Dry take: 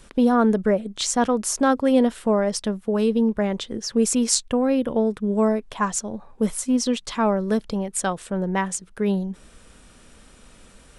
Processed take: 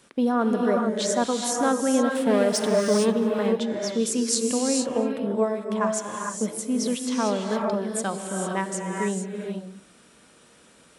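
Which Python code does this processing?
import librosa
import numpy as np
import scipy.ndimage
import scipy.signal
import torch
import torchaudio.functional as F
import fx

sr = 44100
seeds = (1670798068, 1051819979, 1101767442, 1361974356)

p1 = x + fx.echo_single(x, sr, ms=235, db=-23.5, dry=0)
p2 = fx.leveller(p1, sr, passes=2, at=(2.15, 3.16))
p3 = scipy.signal.sosfilt(scipy.signal.butter(2, 160.0, 'highpass', fs=sr, output='sos'), p2)
p4 = fx.rev_gated(p3, sr, seeds[0], gate_ms=480, shape='rising', drr_db=1.0)
y = F.gain(torch.from_numpy(p4), -4.5).numpy()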